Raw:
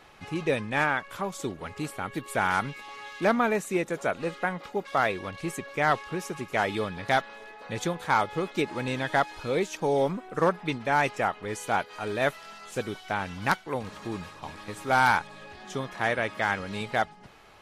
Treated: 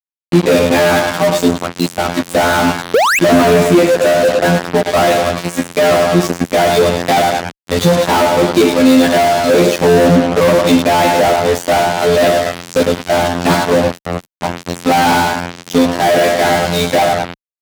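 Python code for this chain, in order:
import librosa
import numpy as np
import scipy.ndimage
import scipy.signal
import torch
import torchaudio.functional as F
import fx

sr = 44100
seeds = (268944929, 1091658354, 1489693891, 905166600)

p1 = x + fx.echo_feedback(x, sr, ms=106, feedback_pct=46, wet_db=-10.0, dry=0)
p2 = fx.noise_reduce_blind(p1, sr, reduce_db=17)
p3 = fx.robotise(p2, sr, hz=86.8)
p4 = fx.graphic_eq_15(p3, sr, hz=(630, 4000, 10000), db=(7, 11, -4))
p5 = fx.room_shoebox(p4, sr, seeds[0], volume_m3=220.0, walls='furnished', distance_m=0.65)
p6 = fx.spec_paint(p5, sr, seeds[1], shape='rise', start_s=2.94, length_s=0.25, low_hz=410.0, high_hz=2800.0, level_db=-18.0)
p7 = fx.fixed_phaser(p6, sr, hz=1000.0, stages=6, at=(13.91, 14.36))
p8 = fx.fuzz(p7, sr, gain_db=41.0, gate_db=-37.0)
p9 = scipy.signal.sosfilt(scipy.signal.butter(2, 46.0, 'highpass', fs=sr, output='sos'), p8)
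p10 = fx.peak_eq(p9, sr, hz=210.0, db=10.5, octaves=2.2)
y = p10 * librosa.db_to_amplitude(1.5)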